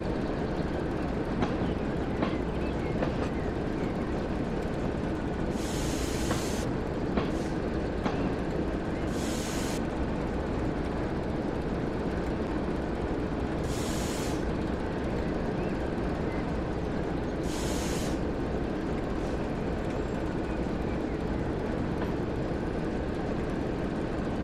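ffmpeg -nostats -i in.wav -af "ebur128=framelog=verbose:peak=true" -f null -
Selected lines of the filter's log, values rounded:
Integrated loudness:
  I:         -31.5 LUFS
  Threshold: -41.5 LUFS
Loudness range:
  LRA:         0.9 LU
  Threshold: -51.5 LUFS
  LRA low:   -31.8 LUFS
  LRA high:  -30.9 LUFS
True peak:
  Peak:      -14.8 dBFS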